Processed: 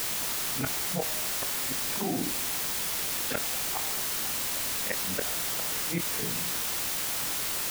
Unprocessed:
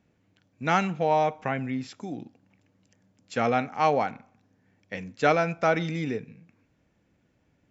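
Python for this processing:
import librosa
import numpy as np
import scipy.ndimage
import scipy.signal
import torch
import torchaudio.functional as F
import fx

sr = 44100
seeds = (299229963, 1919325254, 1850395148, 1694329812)

y = fx.frame_reverse(x, sr, frame_ms=107.0)
y = scipy.signal.sosfilt(scipy.signal.butter(2, 2600.0, 'lowpass', fs=sr, output='sos'), y)
y = fx.low_shelf(y, sr, hz=480.0, db=-4.5)
y = fx.hum_notches(y, sr, base_hz=60, count=7)
y = fx.gate_flip(y, sr, shuts_db=-27.0, range_db=-38)
y = fx.quant_dither(y, sr, seeds[0], bits=8, dither='triangular')
y = fx.doubler(y, sr, ms=23.0, db=-12)
y = fx.env_flatten(y, sr, amount_pct=70)
y = y * librosa.db_to_amplitude(7.5)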